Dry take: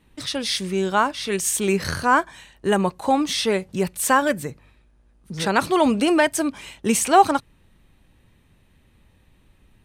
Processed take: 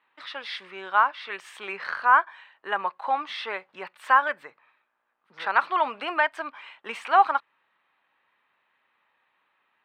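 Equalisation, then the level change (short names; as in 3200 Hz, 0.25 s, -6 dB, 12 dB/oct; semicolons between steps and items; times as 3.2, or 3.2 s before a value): resonant high-pass 1100 Hz, resonance Q 1.5; air absorption 440 m; bell 11000 Hz -11 dB 0.25 oct; 0.0 dB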